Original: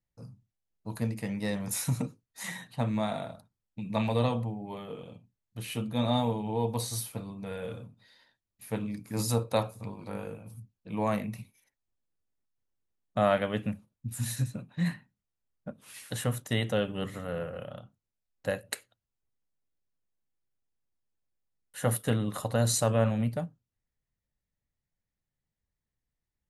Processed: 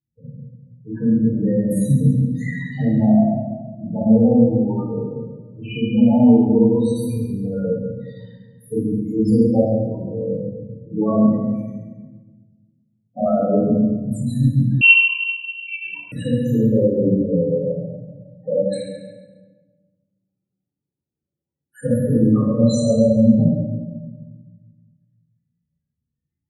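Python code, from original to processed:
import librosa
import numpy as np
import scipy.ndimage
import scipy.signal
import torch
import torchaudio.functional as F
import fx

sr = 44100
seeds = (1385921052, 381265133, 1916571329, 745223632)

p1 = scipy.signal.sosfilt(scipy.signal.butter(2, 110.0, 'highpass', fs=sr, output='sos'), x)
p2 = fx.dynamic_eq(p1, sr, hz=260.0, q=0.82, threshold_db=-43.0, ratio=4.0, max_db=8)
p3 = fx.rider(p2, sr, range_db=4, speed_s=2.0)
p4 = p2 + F.gain(torch.from_numpy(p3), -3.0).numpy()
p5 = 10.0 ** (-14.0 / 20.0) * np.tanh(p4 / 10.0 ** (-14.0 / 20.0))
p6 = fx.spec_topn(p5, sr, count=8)
p7 = fx.doubler(p6, sr, ms=48.0, db=-3.0, at=(4.81, 5.78))
p8 = p7 + fx.echo_feedback(p7, sr, ms=137, feedback_pct=35, wet_db=-11.0, dry=0)
p9 = fx.room_shoebox(p8, sr, seeds[0], volume_m3=870.0, walls='mixed', distance_m=3.8)
p10 = fx.freq_invert(p9, sr, carrier_hz=2900, at=(14.81, 16.12))
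y = F.gain(torch.from_numpy(p10), -1.5).numpy()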